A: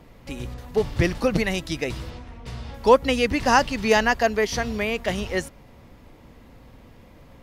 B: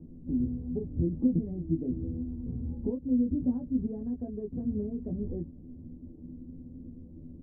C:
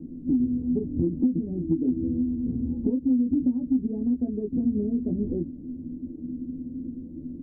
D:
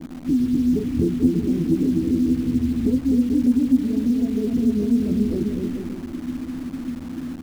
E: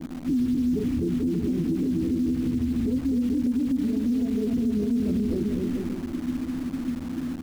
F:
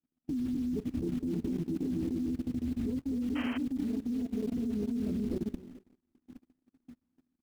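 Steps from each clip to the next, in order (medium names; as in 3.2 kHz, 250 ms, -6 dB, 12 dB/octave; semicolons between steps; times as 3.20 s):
compression 5:1, threshold -28 dBFS, peak gain reduction 17 dB; four-pole ladder low-pass 320 Hz, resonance 50%; on a send: early reflections 12 ms -3.5 dB, 24 ms -4 dB; on the sum: trim +7.5 dB
peaking EQ 280 Hz +14 dB 0.99 oct; compression 6:1, threshold -20 dBFS, peak gain reduction 12 dB
bouncing-ball echo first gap 250 ms, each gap 0.75×, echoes 5; in parallel at -7 dB: word length cut 6-bit, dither none
peak limiter -18.5 dBFS, peak gain reduction 11 dB
gate -24 dBFS, range -46 dB; level held to a coarse grid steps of 16 dB; painted sound noise, 3.35–3.58 s, 280–3200 Hz -41 dBFS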